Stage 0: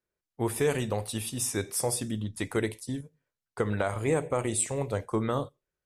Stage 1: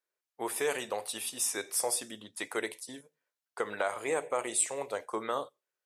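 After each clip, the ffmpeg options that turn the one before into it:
ffmpeg -i in.wav -af "highpass=540" out.wav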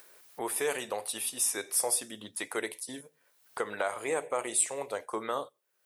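ffmpeg -i in.wav -af "aexciter=amount=1.6:drive=4.4:freq=9500,acompressor=mode=upward:threshold=-33dB:ratio=2.5" out.wav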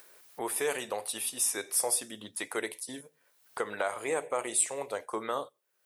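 ffmpeg -i in.wav -af anull out.wav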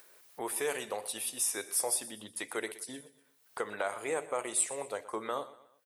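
ffmpeg -i in.wav -af "aecho=1:1:121|242|363:0.141|0.0579|0.0237,volume=-2.5dB" out.wav

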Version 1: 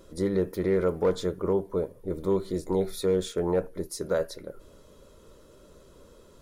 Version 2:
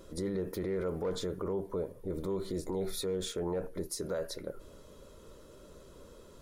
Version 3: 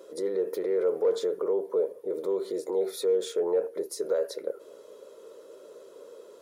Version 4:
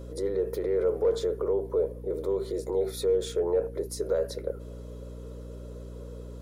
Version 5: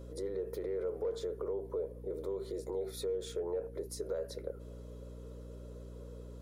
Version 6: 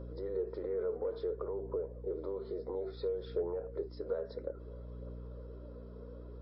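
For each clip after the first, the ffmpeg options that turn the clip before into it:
ffmpeg -i in.wav -af "alimiter=level_in=3dB:limit=-24dB:level=0:latency=1:release=47,volume=-3dB" out.wav
ffmpeg -i in.wav -af "highpass=frequency=450:width_type=q:width=3.6" out.wav
ffmpeg -i in.wav -af "aeval=exprs='val(0)+0.01*(sin(2*PI*60*n/s)+sin(2*PI*2*60*n/s)/2+sin(2*PI*3*60*n/s)/3+sin(2*PI*4*60*n/s)/4+sin(2*PI*5*60*n/s)/5)':channel_layout=same" out.wav
ffmpeg -i in.wav -af "acompressor=threshold=-29dB:ratio=2,volume=-6.5dB" out.wav
ffmpeg -i in.wav -af "highshelf=frequency=1800:width_type=q:width=1.5:gain=-7,aphaser=in_gain=1:out_gain=1:delay=4.9:decay=0.34:speed=0.59:type=triangular" -ar 12000 -c:a libmp3lame -b:a 24k out.mp3

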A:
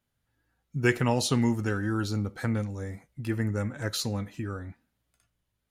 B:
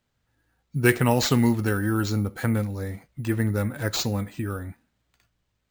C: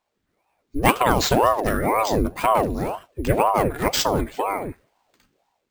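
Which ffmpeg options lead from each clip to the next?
ffmpeg -i in.wav -af "acrusher=samples=4:mix=1:aa=0.000001,volume=4.5dB" out.wav
ffmpeg -i in.wav -af "dynaudnorm=framelen=420:gausssize=3:maxgain=7.5dB,aeval=exprs='val(0)*sin(2*PI*510*n/s+510*0.75/2*sin(2*PI*2*n/s))':channel_layout=same,volume=1dB" out.wav

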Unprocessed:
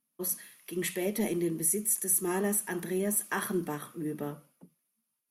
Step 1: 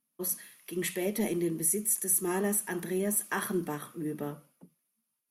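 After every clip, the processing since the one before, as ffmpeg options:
ffmpeg -i in.wav -af anull out.wav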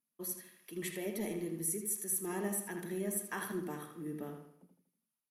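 ffmpeg -i in.wav -filter_complex "[0:a]asplit=2[link_01][link_02];[link_02]adelay=80,lowpass=frequency=3700:poles=1,volume=-5.5dB,asplit=2[link_03][link_04];[link_04]adelay=80,lowpass=frequency=3700:poles=1,volume=0.45,asplit=2[link_05][link_06];[link_06]adelay=80,lowpass=frequency=3700:poles=1,volume=0.45,asplit=2[link_07][link_08];[link_08]adelay=80,lowpass=frequency=3700:poles=1,volume=0.45,asplit=2[link_09][link_10];[link_10]adelay=80,lowpass=frequency=3700:poles=1,volume=0.45[link_11];[link_01][link_03][link_05][link_07][link_09][link_11]amix=inputs=6:normalize=0,volume=-8dB" out.wav

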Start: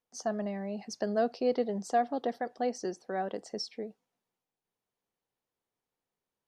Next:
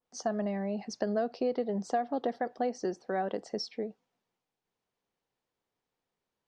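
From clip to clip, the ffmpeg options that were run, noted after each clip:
ffmpeg -i in.wav -af "lowpass=6000,acompressor=threshold=-30dB:ratio=5,adynamicequalizer=threshold=0.00224:dfrequency=2100:dqfactor=0.7:tfrequency=2100:tqfactor=0.7:attack=5:release=100:ratio=0.375:range=2:mode=cutabove:tftype=highshelf,volume=3.5dB" out.wav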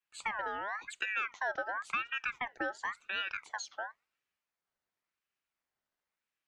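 ffmpeg -i in.wav -af "aeval=exprs='val(0)*sin(2*PI*1600*n/s+1600*0.35/0.94*sin(2*PI*0.94*n/s))':channel_layout=same,volume=-2dB" out.wav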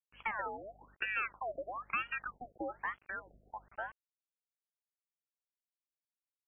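ffmpeg -i in.wav -af "aeval=exprs='val(0)+0.000794*(sin(2*PI*50*n/s)+sin(2*PI*2*50*n/s)/2+sin(2*PI*3*50*n/s)/3+sin(2*PI*4*50*n/s)/4+sin(2*PI*5*50*n/s)/5)':channel_layout=same,acrusher=bits=8:mix=0:aa=0.000001,afftfilt=real='re*lt(b*sr/1024,690*pow(3400/690,0.5+0.5*sin(2*PI*1.1*pts/sr)))':imag='im*lt(b*sr/1024,690*pow(3400/690,0.5+0.5*sin(2*PI*1.1*pts/sr)))':win_size=1024:overlap=0.75,volume=-1dB" out.wav

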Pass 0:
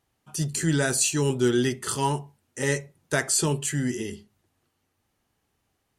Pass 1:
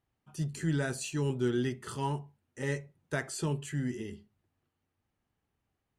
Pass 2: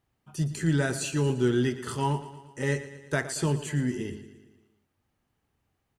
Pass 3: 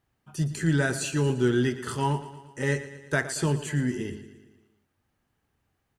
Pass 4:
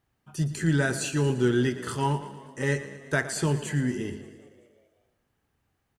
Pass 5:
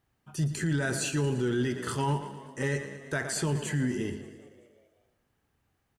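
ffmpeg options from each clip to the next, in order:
ffmpeg -i in.wav -af "bass=frequency=250:gain=4,treble=frequency=4000:gain=-9,volume=-9dB" out.wav
ffmpeg -i in.wav -af "aecho=1:1:115|230|345|460|575|690:0.2|0.114|0.0648|0.037|0.0211|0.012,volume=5.5dB" out.wav
ffmpeg -i in.wav -af "equalizer=frequency=1600:width=3.5:gain=3.5,volume=1dB" out.wav
ffmpeg -i in.wav -filter_complex "[0:a]asplit=6[link_01][link_02][link_03][link_04][link_05][link_06];[link_02]adelay=192,afreqshift=57,volume=-23dB[link_07];[link_03]adelay=384,afreqshift=114,volume=-27.2dB[link_08];[link_04]adelay=576,afreqshift=171,volume=-31.3dB[link_09];[link_05]adelay=768,afreqshift=228,volume=-35.5dB[link_10];[link_06]adelay=960,afreqshift=285,volume=-39.6dB[link_11];[link_01][link_07][link_08][link_09][link_10][link_11]amix=inputs=6:normalize=0" out.wav
ffmpeg -i in.wav -af "alimiter=limit=-20.5dB:level=0:latency=1:release=12" out.wav

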